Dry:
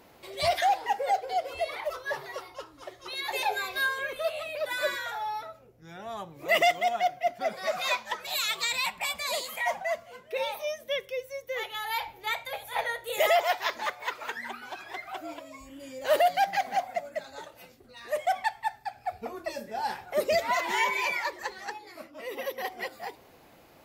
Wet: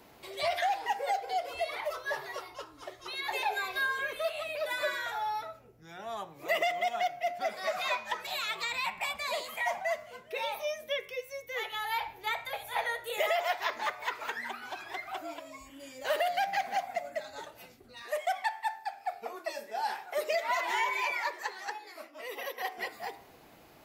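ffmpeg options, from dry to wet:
ffmpeg -i in.wav -filter_complex "[0:a]asettb=1/sr,asplit=3[link_01][link_02][link_03];[link_01]atrim=end=18.024[link_04];[link_02]atrim=start=18.02:end=22.78,asetpts=PTS-STARTPTS,afade=type=in:duration=0.004:curve=qsin,afade=type=out:start_time=4.756:duration=0.004:curve=qsin,highpass=410[link_05];[link_03]atrim=start=22.776[link_06];[link_04][link_05]acrossfade=duration=0.004:curve1=hsin:curve2=qsin[link_07];[link_07][link_06]acrossfade=duration=0.004:curve1=qsin:curve2=hsin,bandreject=frequency=530:width=12,bandreject=frequency=88.12:width_type=h:width=4,bandreject=frequency=176.24:width_type=h:width=4,bandreject=frequency=264.36:width_type=h:width=4,bandreject=frequency=352.48:width_type=h:width=4,bandreject=frequency=440.6:width_type=h:width=4,bandreject=frequency=528.72:width_type=h:width=4,bandreject=frequency=616.84:width_type=h:width=4,bandreject=frequency=704.96:width_type=h:width=4,bandreject=frequency=793.08:width_type=h:width=4,bandreject=frequency=881.2:width_type=h:width=4,bandreject=frequency=969.32:width_type=h:width=4,bandreject=frequency=1057.44:width_type=h:width=4,bandreject=frequency=1145.56:width_type=h:width=4,bandreject=frequency=1233.68:width_type=h:width=4,bandreject=frequency=1321.8:width_type=h:width=4,bandreject=frequency=1409.92:width_type=h:width=4,bandreject=frequency=1498.04:width_type=h:width=4,bandreject=frequency=1586.16:width_type=h:width=4,bandreject=frequency=1674.28:width_type=h:width=4,bandreject=frequency=1762.4:width_type=h:width=4,bandreject=frequency=1850.52:width_type=h:width=4,bandreject=frequency=1938.64:width_type=h:width=4,bandreject=frequency=2026.76:width_type=h:width=4,bandreject=frequency=2114.88:width_type=h:width=4,bandreject=frequency=2203:width_type=h:width=4,bandreject=frequency=2291.12:width_type=h:width=4,bandreject=frequency=2379.24:width_type=h:width=4,bandreject=frequency=2467.36:width_type=h:width=4,bandreject=frequency=2555.48:width_type=h:width=4,bandreject=frequency=2643.6:width_type=h:width=4,bandreject=frequency=2731.72:width_type=h:width=4,acrossover=split=350|1400|3200[link_08][link_09][link_10][link_11];[link_08]acompressor=threshold=-56dB:ratio=4[link_12];[link_09]acompressor=threshold=-29dB:ratio=4[link_13];[link_10]acompressor=threshold=-34dB:ratio=4[link_14];[link_11]acompressor=threshold=-45dB:ratio=4[link_15];[link_12][link_13][link_14][link_15]amix=inputs=4:normalize=0" out.wav

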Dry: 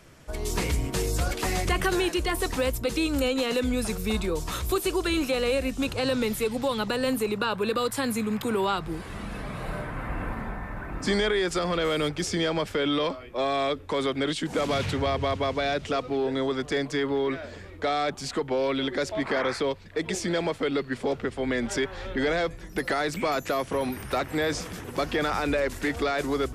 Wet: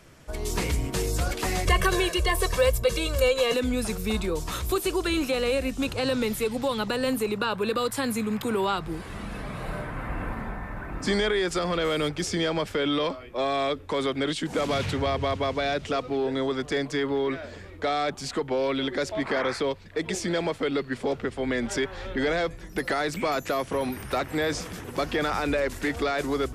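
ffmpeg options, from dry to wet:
ffmpeg -i in.wav -filter_complex "[0:a]asettb=1/sr,asplit=3[link_01][link_02][link_03];[link_01]atrim=end=1.664[link_04];[link_02]atrim=start=1.66:end=3.54,asetpts=PTS-STARTPTS,afade=type=in:duration=0.004:curve=qsin,afade=type=out:start_time=1.876:duration=0.004:curve=qsin,aecho=1:1:1.8:0.96,atrim=end_sample=82908[link_05];[link_03]atrim=start=3.536[link_06];[link_04][link_05]acrossfade=duration=0.004:curve1=hsin:curve2=qsin[link_07];[link_07][link_06]acrossfade=duration=0.004:curve1=qsin:curve2=hsin" out.wav

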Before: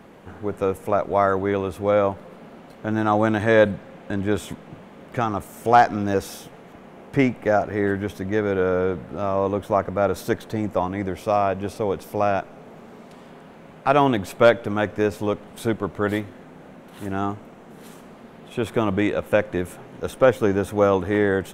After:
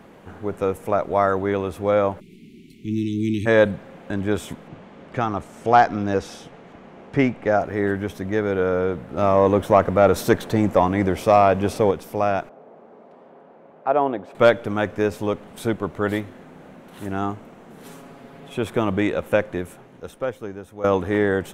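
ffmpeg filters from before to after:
ffmpeg -i in.wav -filter_complex "[0:a]asplit=3[link_01][link_02][link_03];[link_01]afade=type=out:start_time=2.19:duration=0.02[link_04];[link_02]asuperstop=centerf=920:order=20:qfactor=0.53,afade=type=in:start_time=2.19:duration=0.02,afade=type=out:start_time=3.45:duration=0.02[link_05];[link_03]afade=type=in:start_time=3.45:duration=0.02[link_06];[link_04][link_05][link_06]amix=inputs=3:normalize=0,asettb=1/sr,asplit=3[link_07][link_08][link_09];[link_07]atrim=end=4.684[link_10];[link_08]atrim=start=4.68:end=7.6,asetpts=PTS-STARTPTS,afade=type=in:duration=0.004:curve=qsin,afade=type=out:start_time=2.916:duration=0.004:curve=qsin,lowpass=6300[link_11];[link_09]atrim=start=7.596[link_12];[link_10][link_11]acrossfade=duration=0.004:curve1=hsin:curve2=qsin[link_13];[link_13][link_12]acrossfade=duration=0.004:curve1=qsin:curve2=hsin,asettb=1/sr,asplit=3[link_14][link_15][link_16];[link_14]atrim=end=9.174[link_17];[link_15]atrim=start=9.17:end=11.91,asetpts=PTS-STARTPTS,afade=type=in:duration=0.004:curve=qsin,afade=type=out:start_time=2.736:duration=0.004:curve=qsin,acontrast=64[link_18];[link_16]atrim=start=11.906[link_19];[link_17][link_18]acrossfade=duration=0.004:curve1=hsin:curve2=qsin[link_20];[link_20][link_19]acrossfade=duration=0.004:curve1=qsin:curve2=hsin,asettb=1/sr,asplit=3[link_21][link_22][link_23];[link_21]atrim=end=12.494[link_24];[link_22]atrim=start=12.49:end=14.35,asetpts=PTS-STARTPTS,afade=type=in:duration=0.004:curve=qsin,afade=type=out:start_time=1.856:duration=0.004:curve=qsin,bandpass=frequency=590:width_type=q:width=1.1[link_25];[link_23]atrim=start=14.346[link_26];[link_24][link_25]acrossfade=duration=0.004:curve1=hsin:curve2=qsin[link_27];[link_27][link_26]acrossfade=duration=0.004:curve1=qsin:curve2=hsin,asettb=1/sr,asplit=3[link_28][link_29][link_30];[link_28]atrim=end=17.844[link_31];[link_29]atrim=start=17.84:end=18.58,asetpts=PTS-STARTPTS,afade=type=in:duration=0.004:curve=qsin,afade=type=out:start_time=0.736:duration=0.004:curve=qsin,aecho=1:1:7.2:0.65,atrim=end_sample=32634[link_32];[link_30]atrim=start=18.576[link_33];[link_31][link_32]acrossfade=duration=0.004:curve1=hsin:curve2=qsin[link_34];[link_34][link_33]acrossfade=duration=0.004:curve1=qsin:curve2=hsin,asplit=2[link_35][link_36];[link_35]atrim=end=20.84,asetpts=PTS-STARTPTS,afade=type=out:start_time=19.35:duration=1.49:curve=qua:silence=0.177828[link_37];[link_36]atrim=start=20.84,asetpts=PTS-STARTPTS,afade=type=in:duration=0.004:curve=hsin:silence=0.177828[link_38];[link_37][link_38]concat=n=2:v=0:a=1" out.wav

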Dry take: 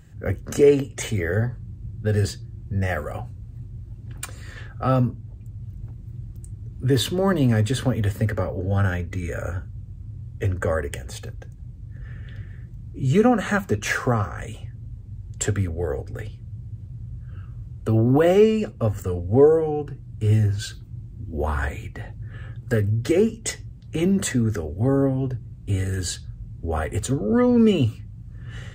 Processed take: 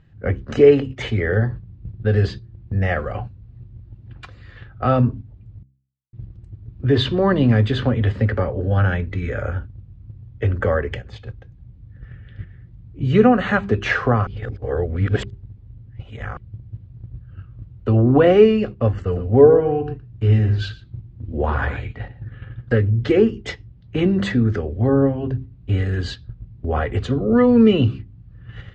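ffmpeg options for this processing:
ffmpeg -i in.wav -filter_complex "[0:a]asettb=1/sr,asplit=3[link_01][link_02][link_03];[link_01]atrim=end=19.004[link_04];[link_02]atrim=start=19:end=22.8,asetpts=PTS-STARTPTS,afade=type=in:duration=0.004:curve=qsin,afade=type=out:start_time=3.796:duration=0.004:curve=qsin,aecho=1:1:117:0.299,atrim=end_sample=167580[link_05];[link_03]atrim=start=22.796[link_06];[link_04][link_05]acrossfade=duration=0.004:curve1=hsin:curve2=qsin[link_07];[link_07][link_06]acrossfade=duration=0.004:curve1=qsin:curve2=hsin,asplit=5[link_08][link_09][link_10][link_11][link_12];[link_08]atrim=end=5.63,asetpts=PTS-STARTPTS,afade=type=out:start_time=5.626:duration=0.004:curve=hsin[link_13];[link_09]atrim=start=5.63:end=6.13,asetpts=PTS-STARTPTS,volume=0[link_14];[link_10]atrim=start=6.13:end=14.272,asetpts=PTS-STARTPTS,afade=type=in:duration=0.004:curve=hsin[link_15];[link_11]atrim=start=14.268:end=16.372,asetpts=PTS-STARTPTS,areverse[link_16];[link_12]atrim=start=16.368[link_17];[link_13][link_14][link_15]concat=n=3:v=0:a=1[link_18];[link_18][link_16]acrossfade=duration=0.004:curve1=hsin:curve2=hsin[link_19];[link_19][link_17]acrossfade=duration=0.004:curve1=hsin:curve2=hsin,lowpass=frequency=4100:width=0.5412,lowpass=frequency=4100:width=1.3066,bandreject=frequency=66.16:width_type=h:width=4,bandreject=frequency=132.32:width_type=h:width=4,bandreject=frequency=198.48:width_type=h:width=4,bandreject=frequency=264.64:width_type=h:width=4,bandreject=frequency=330.8:width_type=h:width=4,bandreject=frequency=396.96:width_type=h:width=4,agate=range=-8dB:threshold=-33dB:ratio=16:detection=peak,volume=4dB" out.wav

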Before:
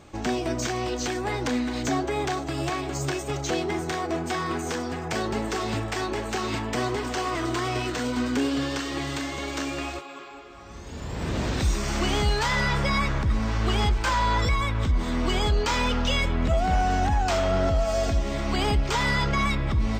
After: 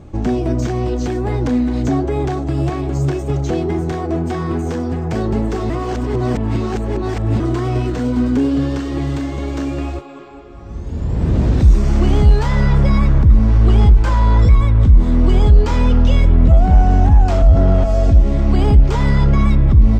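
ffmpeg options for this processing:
ffmpeg -i in.wav -filter_complex "[0:a]asplit=5[link_01][link_02][link_03][link_04][link_05];[link_01]atrim=end=5.702[link_06];[link_02]atrim=start=5.698:end=7.402,asetpts=PTS-STARTPTS,areverse[link_07];[link_03]atrim=start=7.398:end=17.422[link_08];[link_04]atrim=start=17.418:end=17.842,asetpts=PTS-STARTPTS,areverse[link_09];[link_05]atrim=start=17.838[link_10];[link_06][link_07]acrossfade=duration=0.004:curve1=hsin:curve2=hsin[link_11];[link_11][link_08]acrossfade=duration=0.004:curve1=hsin:curve2=hsin[link_12];[link_12][link_09]acrossfade=duration=0.004:curve1=hsin:curve2=hsin[link_13];[link_13][link_10]acrossfade=duration=0.004:curve1=hsin:curve2=hsin,tiltshelf=frequency=840:gain=7.5,acontrast=84,lowshelf=frequency=160:gain=7.5,volume=-4.5dB" out.wav

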